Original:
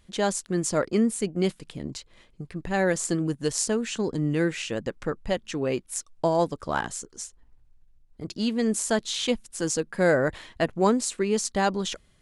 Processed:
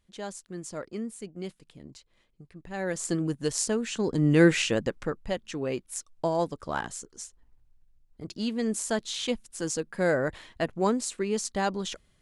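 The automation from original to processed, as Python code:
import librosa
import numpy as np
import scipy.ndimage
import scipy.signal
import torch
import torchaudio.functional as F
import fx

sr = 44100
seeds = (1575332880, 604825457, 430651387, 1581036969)

y = fx.gain(x, sr, db=fx.line((2.64, -12.5), (3.13, -2.0), (3.95, -2.0), (4.51, 7.5), (5.22, -4.0)))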